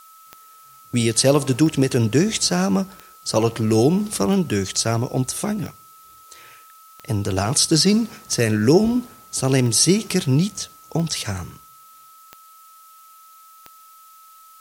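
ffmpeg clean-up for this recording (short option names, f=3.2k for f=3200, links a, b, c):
-af "adeclick=t=4,bandreject=f=1.3k:w=30,agate=range=-21dB:threshold=-40dB"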